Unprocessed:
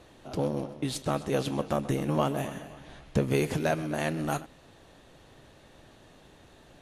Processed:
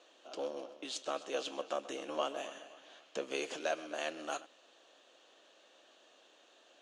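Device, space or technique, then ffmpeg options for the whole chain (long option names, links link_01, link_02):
phone speaker on a table: -af "highpass=frequency=380:width=0.5412,highpass=frequency=380:width=1.3066,equalizer=frequency=410:width_type=q:width=4:gain=-6,equalizer=frequency=880:width_type=q:width=4:gain=-6,equalizer=frequency=2000:width_type=q:width=4:gain=-6,equalizer=frequency=3000:width_type=q:width=4:gain=6,equalizer=frequency=6700:width_type=q:width=4:gain=4,lowpass=frequency=7500:width=0.5412,lowpass=frequency=7500:width=1.3066,volume=-5dB"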